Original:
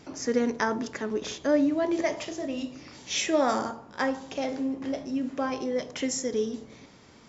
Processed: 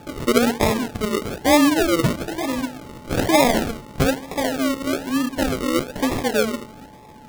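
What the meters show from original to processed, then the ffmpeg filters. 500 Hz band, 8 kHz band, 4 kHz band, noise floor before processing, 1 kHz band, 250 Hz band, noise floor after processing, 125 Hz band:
+6.5 dB, n/a, +9.0 dB, -53 dBFS, +9.0 dB, +8.0 dB, -43 dBFS, +19.5 dB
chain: -af "acrusher=samples=42:mix=1:aa=0.000001:lfo=1:lforange=25.2:lforate=1.1,aeval=exprs='val(0)+0.002*sin(2*PI*860*n/s)':c=same,volume=8dB"

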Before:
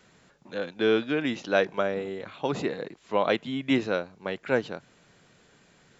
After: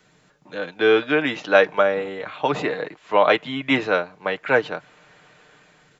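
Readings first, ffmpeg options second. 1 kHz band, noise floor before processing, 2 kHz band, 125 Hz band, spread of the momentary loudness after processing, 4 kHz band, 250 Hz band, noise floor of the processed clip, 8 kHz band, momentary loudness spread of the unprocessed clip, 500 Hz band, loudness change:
+9.5 dB, -61 dBFS, +10.0 dB, +2.0 dB, 14 LU, +6.5 dB, +2.5 dB, -58 dBFS, n/a, 11 LU, +7.0 dB, +7.5 dB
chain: -filter_complex "[0:a]aecho=1:1:6.6:0.42,acrossover=split=520|3200[a][b][c];[b]dynaudnorm=f=280:g=5:m=11dB[d];[a][d][c]amix=inputs=3:normalize=0"

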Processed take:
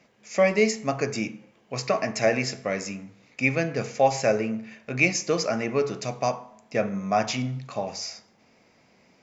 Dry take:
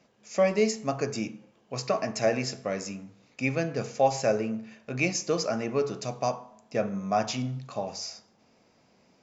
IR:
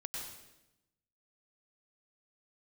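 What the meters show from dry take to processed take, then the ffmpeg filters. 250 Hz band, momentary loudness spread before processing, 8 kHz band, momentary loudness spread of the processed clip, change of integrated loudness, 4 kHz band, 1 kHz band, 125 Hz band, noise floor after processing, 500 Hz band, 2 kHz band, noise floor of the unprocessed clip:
+2.5 dB, 12 LU, n/a, 12 LU, +3.5 dB, +3.0 dB, +3.0 dB, +2.5 dB, -61 dBFS, +2.5 dB, +7.0 dB, -64 dBFS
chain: -af "equalizer=f=2.1k:t=o:w=0.56:g=7,volume=2.5dB"

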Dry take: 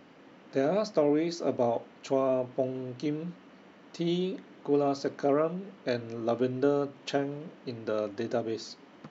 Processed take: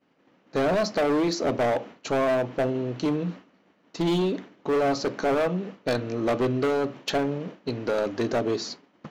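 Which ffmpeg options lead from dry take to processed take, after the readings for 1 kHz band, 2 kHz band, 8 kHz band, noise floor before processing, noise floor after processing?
+6.5 dB, +10.0 dB, n/a, -55 dBFS, -64 dBFS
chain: -af "agate=range=-33dB:threshold=-42dB:ratio=3:detection=peak,asoftclip=type=hard:threshold=-28.5dB,volume=8.5dB"

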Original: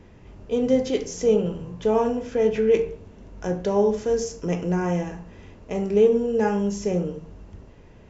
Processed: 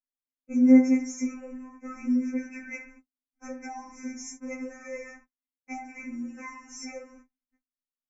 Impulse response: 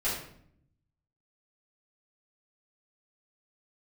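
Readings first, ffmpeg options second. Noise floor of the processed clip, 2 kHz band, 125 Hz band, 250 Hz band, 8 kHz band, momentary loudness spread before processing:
under -85 dBFS, -2.0 dB, under -25 dB, +1.0 dB, n/a, 12 LU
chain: -filter_complex "[0:a]agate=range=-58dB:threshold=-35dB:ratio=16:detection=peak,equalizer=f=125:t=o:w=1:g=-6,equalizer=f=250:t=o:w=1:g=8,equalizer=f=500:t=o:w=1:g=-11,equalizer=f=2k:t=o:w=1:g=8,equalizer=f=4k:t=o:w=1:g=5,asplit=2[a][b];[b]acompressor=threshold=-33dB:ratio=6,volume=-0.5dB[c];[a][c]amix=inputs=2:normalize=0,asuperstop=centerf=3700:order=12:qfactor=1.2,afftfilt=real='re*3.46*eq(mod(b,12),0)':imag='im*3.46*eq(mod(b,12),0)':win_size=2048:overlap=0.75,volume=-6dB"

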